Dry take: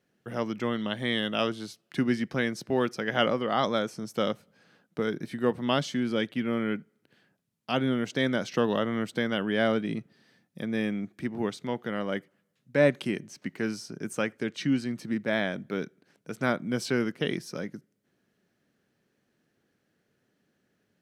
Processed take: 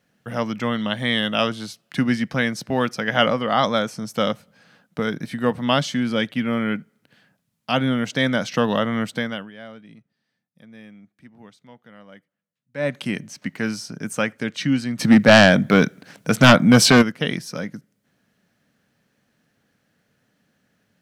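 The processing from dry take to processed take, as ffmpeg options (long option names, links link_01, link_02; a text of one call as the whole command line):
ffmpeg -i in.wav -filter_complex "[0:a]asplit=3[link_01][link_02][link_03];[link_01]afade=type=out:start_time=14.99:duration=0.02[link_04];[link_02]aeval=exprs='0.299*sin(PI/2*2.82*val(0)/0.299)':channel_layout=same,afade=type=in:start_time=14.99:duration=0.02,afade=type=out:start_time=17.01:duration=0.02[link_05];[link_03]afade=type=in:start_time=17.01:duration=0.02[link_06];[link_04][link_05][link_06]amix=inputs=3:normalize=0,asplit=3[link_07][link_08][link_09];[link_07]atrim=end=9.51,asetpts=PTS-STARTPTS,afade=type=out:start_time=9.07:duration=0.44:silence=0.0891251[link_10];[link_08]atrim=start=9.51:end=12.71,asetpts=PTS-STARTPTS,volume=-21dB[link_11];[link_09]atrim=start=12.71,asetpts=PTS-STARTPTS,afade=type=in:duration=0.44:silence=0.0891251[link_12];[link_10][link_11][link_12]concat=n=3:v=0:a=1,equalizer=frequency=370:width_type=o:width=0.5:gain=-10.5,volume=8dB" out.wav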